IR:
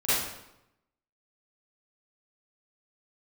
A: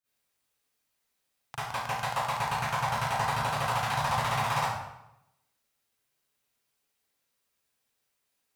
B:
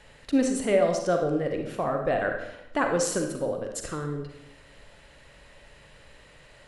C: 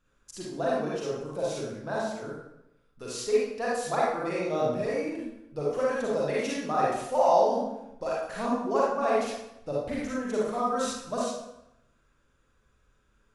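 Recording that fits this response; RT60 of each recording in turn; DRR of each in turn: A; 0.85, 0.85, 0.85 seconds; −15.5, 3.0, −6.5 decibels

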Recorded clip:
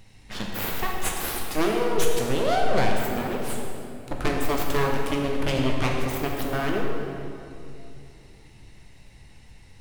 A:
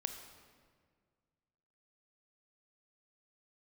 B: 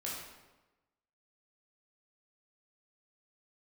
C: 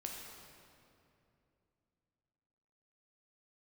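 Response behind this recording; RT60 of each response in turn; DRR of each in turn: C; 1.8, 1.1, 2.7 seconds; 6.5, −5.5, −1.0 decibels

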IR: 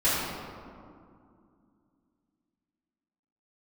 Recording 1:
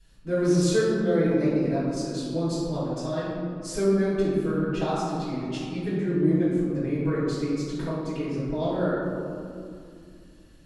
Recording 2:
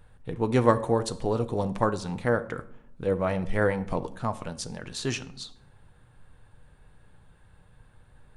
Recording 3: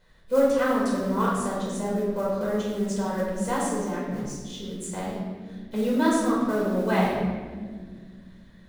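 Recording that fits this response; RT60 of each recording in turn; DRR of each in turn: 1; 2.4, 0.70, 1.7 seconds; −13.5, 9.5, −6.5 decibels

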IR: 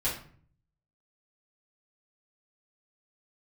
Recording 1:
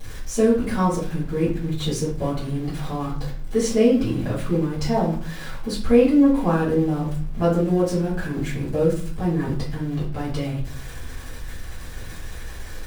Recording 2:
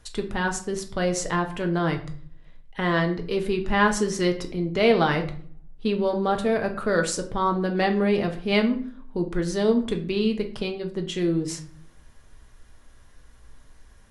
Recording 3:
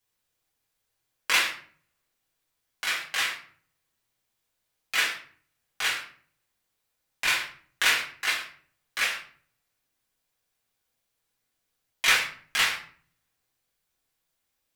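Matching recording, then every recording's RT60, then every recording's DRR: 1; 0.50, 0.50, 0.50 seconds; −10.0, 3.5, −5.5 decibels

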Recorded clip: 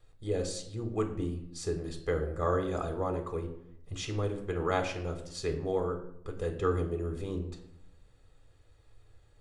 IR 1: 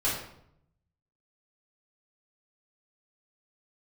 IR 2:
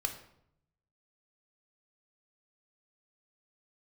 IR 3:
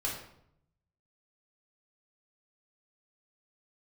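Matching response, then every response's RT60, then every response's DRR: 2; 0.70, 0.70, 0.70 seconds; −9.0, 5.0, −4.0 decibels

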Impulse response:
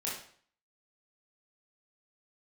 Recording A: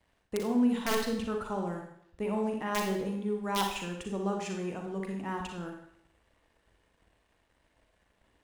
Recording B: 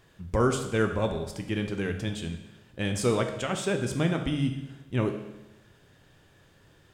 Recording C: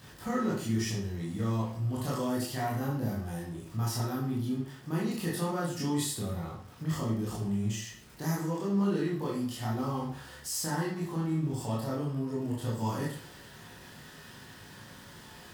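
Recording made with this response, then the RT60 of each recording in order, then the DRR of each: C; 0.70, 1.0, 0.55 seconds; 1.5, 5.0, −6.0 decibels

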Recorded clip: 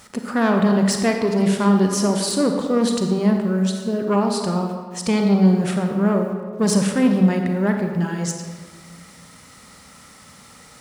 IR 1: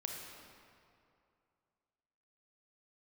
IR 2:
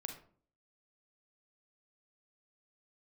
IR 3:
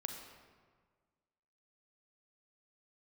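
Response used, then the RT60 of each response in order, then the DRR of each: 3; 2.5, 0.50, 1.6 seconds; 0.0, 4.0, 3.5 decibels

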